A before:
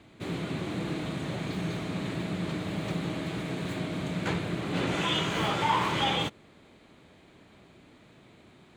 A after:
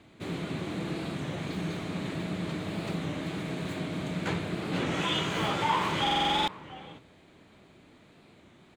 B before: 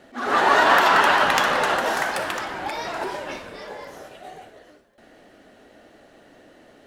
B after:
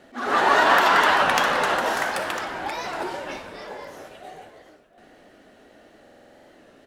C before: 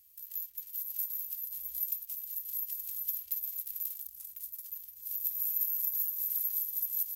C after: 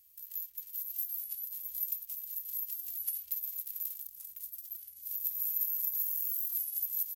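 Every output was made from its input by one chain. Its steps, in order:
hum notches 60/120 Hz; echo from a far wall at 120 m, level -15 dB; buffer glitch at 6.02 s, samples 2048, times 9; warped record 33 1/3 rpm, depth 100 cents; trim -1 dB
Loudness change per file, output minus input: -0.5 LU, -1.0 LU, -1.0 LU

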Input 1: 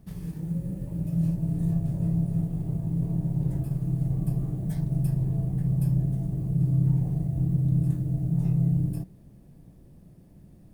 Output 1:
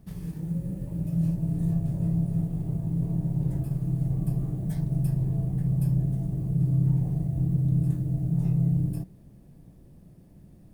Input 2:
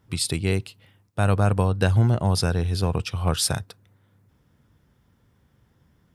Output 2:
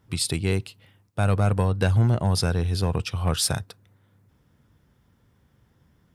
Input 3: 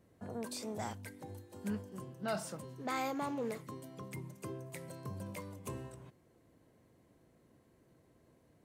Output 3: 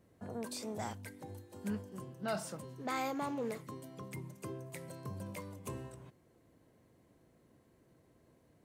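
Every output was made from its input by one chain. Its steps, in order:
saturation -9 dBFS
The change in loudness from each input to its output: 0.0 LU, -1.0 LU, 0.0 LU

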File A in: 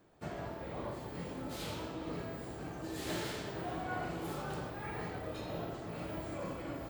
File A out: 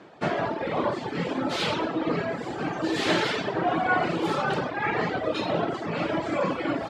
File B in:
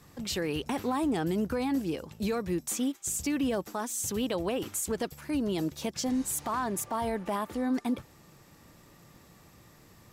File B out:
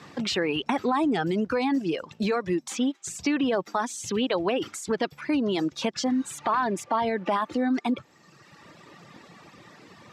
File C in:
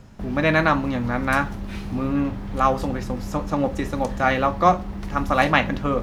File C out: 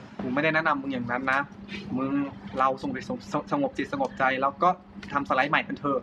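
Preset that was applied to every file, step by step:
reverb removal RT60 1.4 s; peaking EQ 450 Hz -3 dB 2.1 oct; compression 2:1, threshold -39 dBFS; band-pass 210–4000 Hz; normalise loudness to -27 LUFS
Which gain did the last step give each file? +21.0 dB, +14.5 dB, +10.0 dB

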